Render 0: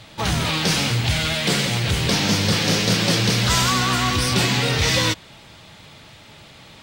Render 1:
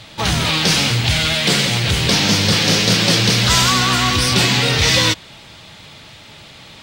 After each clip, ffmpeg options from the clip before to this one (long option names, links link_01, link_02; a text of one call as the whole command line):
ffmpeg -i in.wav -af "equalizer=frequency=3900:width_type=o:width=1.9:gain=3.5,volume=3dB" out.wav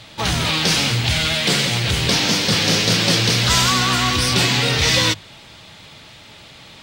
ffmpeg -i in.wav -af "bandreject=frequency=50:width_type=h:width=6,bandreject=frequency=100:width_type=h:width=6,bandreject=frequency=150:width_type=h:width=6,bandreject=frequency=200:width_type=h:width=6,volume=-2dB" out.wav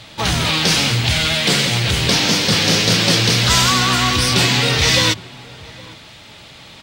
ffmpeg -i in.wav -filter_complex "[0:a]asplit=2[link_01][link_02];[link_02]adelay=816.3,volume=-21dB,highshelf=frequency=4000:gain=-18.4[link_03];[link_01][link_03]amix=inputs=2:normalize=0,volume=2dB" out.wav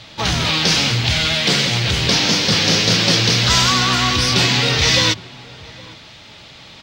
ffmpeg -i in.wav -af "highshelf=frequency=7300:width_type=q:width=1.5:gain=-7,volume=-1dB" out.wav